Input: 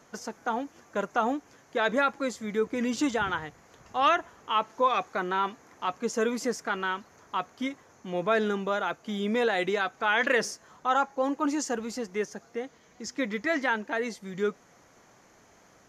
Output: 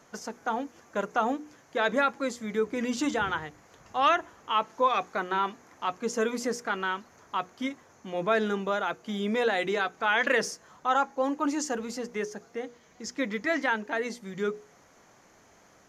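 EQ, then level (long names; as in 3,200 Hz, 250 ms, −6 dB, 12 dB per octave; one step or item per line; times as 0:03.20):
mains-hum notches 60/120/180/240/300/360/420/480 Hz
0.0 dB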